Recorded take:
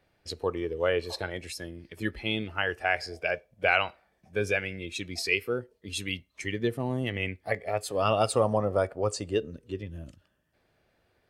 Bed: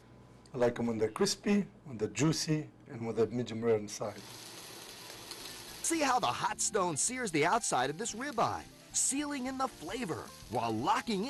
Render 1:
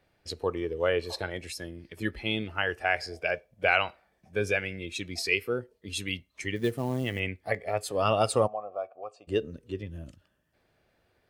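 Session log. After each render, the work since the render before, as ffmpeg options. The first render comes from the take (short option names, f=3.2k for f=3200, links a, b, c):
-filter_complex "[0:a]asettb=1/sr,asplit=3[a][b][c];[a]atrim=end=6.564[d];[b]atrim=start=6.56:end=7.2,asetpts=PTS-STARTPTS,afade=t=in:d=0.004:c=qsin,afade=t=out:st=0.636:d=0.004:c=qsin,acrusher=bits=6:mode=log:mix=0:aa=0.000001[e];[c]atrim=start=7.196[f];[d][e]acrossfade=d=0.004:c1=hsin:c2=qsin[g];[g][f]acrossfade=d=0.004:c1=qsin:c2=hsin,asplit=3[h][i][j];[h]afade=t=out:st=8.46:d=0.02[k];[i]asplit=3[l][m][n];[l]bandpass=f=730:t=q:w=8,volume=0dB[o];[m]bandpass=f=1.09k:t=q:w=8,volume=-6dB[p];[n]bandpass=f=2.44k:t=q:w=8,volume=-9dB[q];[o][p][q]amix=inputs=3:normalize=0,afade=t=in:st=8.46:d=0.02,afade=t=out:st=9.27:d=0.02[r];[j]afade=t=in:st=9.27:d=0.02[s];[k][r][s]amix=inputs=3:normalize=0"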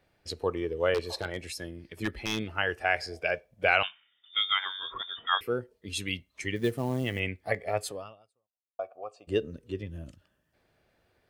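-filter_complex "[0:a]asettb=1/sr,asplit=3[a][b][c];[a]atrim=end=0.944[d];[b]atrim=start=0.94:end=2.46,asetpts=PTS-STARTPTS,afade=t=in:d=0.004:c=qsin,afade=t=out:st=1.516:d=0.004:c=qsin,aeval=exprs='0.0891*(abs(mod(val(0)/0.0891+3,4)-2)-1)':c=same[e];[c]atrim=start=2.456[f];[d][e]acrossfade=d=0.004:c1=hsin:c2=qsin[g];[g][f]acrossfade=d=0.004:c1=qsin:c2=hsin,asettb=1/sr,asplit=3[h][i][j];[h]atrim=end=3.834[k];[i]atrim=start=3.83:end=5.41,asetpts=PTS-STARTPTS,afade=t=in:d=0.004:c=qsin,afade=t=out:st=1.576:d=0.004:c=qsin,lowpass=f=3.1k:t=q:w=0.5098,lowpass=f=3.1k:t=q:w=0.6013,lowpass=f=3.1k:t=q:w=0.9,lowpass=f=3.1k:t=q:w=2.563,afreqshift=-3700[l];[j]atrim=start=5.406[m];[k][l]acrossfade=d=0.004:c1=hsin:c2=qsin[n];[n][m]acrossfade=d=0.004:c1=qsin:c2=hsin,asplit=2[o][p];[o]atrim=end=8.79,asetpts=PTS-STARTPTS,afade=t=out:st=7.88:d=0.91:c=exp[q];[p]atrim=start=8.79,asetpts=PTS-STARTPTS,afade=t=in:d=0.004:c=hsin[r];[q][r]concat=n=2:v=0:a=1"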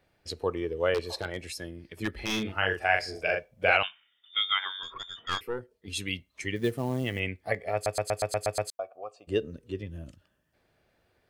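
-filter_complex "[0:a]asettb=1/sr,asplit=3[a][b][c];[a]atrim=end=2.134[d];[b]atrim=start=2.13:end=3.77,asetpts=PTS-STARTPTS,afade=t=in:d=0.004:c=qsin,afade=t=out:st=1.636:d=0.004:c=qsin,asplit=2[e][f];[f]adelay=42,volume=-3dB[g];[e][g]amix=inputs=2:normalize=0,atrim=end_sample=72324[h];[c]atrim=start=3.766[i];[d][h]acrossfade=d=0.004:c1=hsin:c2=qsin[j];[j][i]acrossfade=d=0.004:c1=qsin:c2=hsin,asettb=1/sr,asplit=3[k][l][m];[k]atrim=end=4.834[n];[l]atrim=start=4.83:end=5.88,asetpts=PTS-STARTPTS,afade=t=in:d=0.004:c=qsin,afade=t=out:st=1.046:d=0.004:c=qsin,aeval=exprs='(tanh(12.6*val(0)+0.65)-tanh(0.65))/12.6':c=same[o];[m]atrim=start=5.876[p];[n][o]acrossfade=d=0.004:c1=hsin:c2=qsin[q];[q][p]acrossfade=d=0.004:c1=qsin:c2=hsin,asplit=9[r][s][t][u][v][w][x][y][z];[r]atrim=end=7.862[aa];[s]atrim=start=7.738:end=7.862[ab];[t]atrim=start=7.738:end=7.862[ac];[u]atrim=start=7.738:end=7.862[ad];[v]atrim=start=7.738:end=7.862[ae];[w]atrim=start=7.738:end=7.862[af];[x]atrim=start=7.738:end=7.862[ag];[y]atrim=start=7.738:end=7.862[ah];[z]atrim=start=8.698[ai];[aa][ab]acrossfade=d=0.004:c1=hsin:c2=hsin[aj];[aj][ac]acrossfade=d=0.004:c1=hsin:c2=hsin[ak];[ak][ad]acrossfade=d=0.004:c1=hsin:c2=hsin[al];[al][ae]acrossfade=d=0.004:c1=hsin:c2=hsin[am];[am][af]acrossfade=d=0.004:c1=hsin:c2=hsin[an];[an][ag]acrossfade=d=0.004:c1=hsin:c2=hsin[ao];[ao][ah]acrossfade=d=0.004:c1=hsin:c2=hsin[ap];[ap][ai]acrossfade=d=0.004:c1=hsin:c2=hsin"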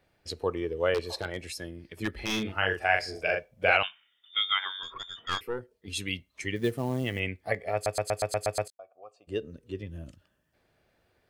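-filter_complex "[0:a]asplit=2[a][b];[a]atrim=end=8.68,asetpts=PTS-STARTPTS,afade=t=out:st=8.676:d=0.004:c=hsin:silence=0.133352[c];[b]atrim=start=8.68,asetpts=PTS-STARTPTS,afade=t=in:d=1.31:silence=0.133352[d];[c][d]concat=n=2:v=0:a=1"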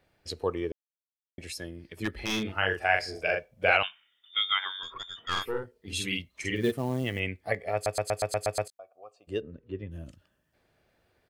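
-filter_complex "[0:a]asplit=3[a][b][c];[a]afade=t=out:st=5.35:d=0.02[d];[b]asplit=2[e][f];[f]adelay=47,volume=-2dB[g];[e][g]amix=inputs=2:normalize=0,afade=t=in:st=5.35:d=0.02,afade=t=out:st=6.7:d=0.02[h];[c]afade=t=in:st=6.7:d=0.02[i];[d][h][i]amix=inputs=3:normalize=0,asplit=3[j][k][l];[j]afade=t=out:st=9.4:d=0.02[m];[k]lowpass=2.2k,afade=t=in:st=9.4:d=0.02,afade=t=out:st=9.9:d=0.02[n];[l]afade=t=in:st=9.9:d=0.02[o];[m][n][o]amix=inputs=3:normalize=0,asplit=3[p][q][r];[p]atrim=end=0.72,asetpts=PTS-STARTPTS,afade=t=out:st=0.716:d=0.004:c=hsin[s];[q]atrim=start=0.72:end=1.38,asetpts=PTS-STARTPTS,volume=0[t];[r]atrim=start=1.38,asetpts=PTS-STARTPTS,afade=t=in:d=0.004:c=hsin[u];[s][t][u]concat=n=3:v=0:a=1"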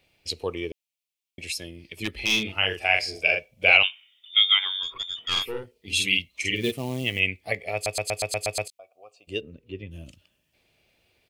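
-af "highshelf=f=2k:t=q:w=3:g=6.5"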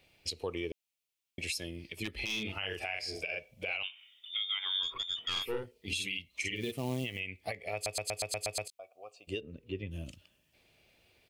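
-af "acompressor=threshold=-25dB:ratio=4,alimiter=limit=-24dB:level=0:latency=1:release=248"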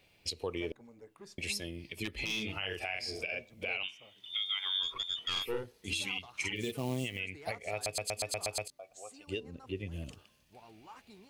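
-filter_complex "[1:a]volume=-22.5dB[a];[0:a][a]amix=inputs=2:normalize=0"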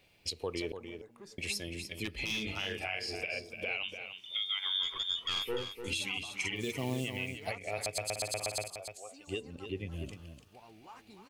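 -af "aecho=1:1:296:0.376"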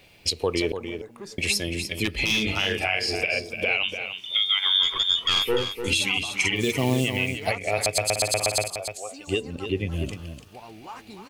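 -af "volume=12dB"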